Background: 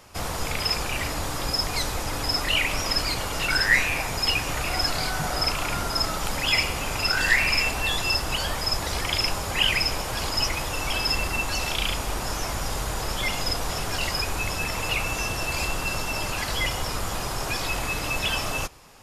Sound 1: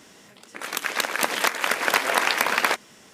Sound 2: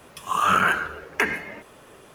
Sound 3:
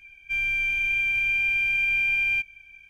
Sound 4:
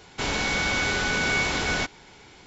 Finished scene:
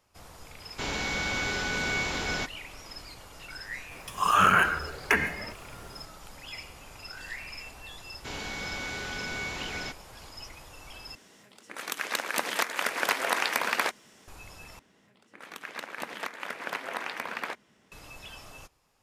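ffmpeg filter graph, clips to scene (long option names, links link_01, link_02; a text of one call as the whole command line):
ffmpeg -i bed.wav -i cue0.wav -i cue1.wav -i cue2.wav -i cue3.wav -filter_complex "[4:a]asplit=2[link_01][link_02];[1:a]asplit=2[link_03][link_04];[0:a]volume=-19.5dB[link_05];[2:a]asubboost=boost=4.5:cutoff=170[link_06];[link_04]bass=frequency=250:gain=5,treble=frequency=4000:gain=-8[link_07];[link_05]asplit=3[link_08][link_09][link_10];[link_08]atrim=end=11.154[link_11];[link_03]atrim=end=3.13,asetpts=PTS-STARTPTS,volume=-6dB[link_12];[link_09]atrim=start=14.276:end=14.794[link_13];[link_07]atrim=end=3.13,asetpts=PTS-STARTPTS,volume=-13dB[link_14];[link_10]atrim=start=17.916[link_15];[link_01]atrim=end=2.46,asetpts=PTS-STARTPTS,volume=-5.5dB,afade=type=in:duration=0.004:curve=hsin,afade=type=out:start_time=2.456:duration=0.004:curve=hsin,adelay=600[link_16];[link_06]atrim=end=2.14,asetpts=PTS-STARTPTS,volume=-1dB,afade=type=in:duration=0.004:curve=hsin,afade=type=out:start_time=2.136:duration=0.004:curve=hsin,adelay=3910[link_17];[link_02]atrim=end=2.46,asetpts=PTS-STARTPTS,volume=-11dB,afade=type=in:duration=0.004:curve=hsin,afade=type=out:start_time=2.456:duration=0.004:curve=hsin,adelay=8060[link_18];[link_11][link_12]acrossfade=duration=0.004:curve1=hsin:curve2=hsin[link_19];[link_19][link_13]acrossfade=duration=0.004:curve1=hsin:curve2=hsin[link_20];[link_20][link_14]acrossfade=duration=0.004:curve1=hsin:curve2=hsin[link_21];[link_21][link_15]acrossfade=duration=0.004:curve1=hsin:curve2=hsin[link_22];[link_22][link_16][link_17][link_18]amix=inputs=4:normalize=0" out.wav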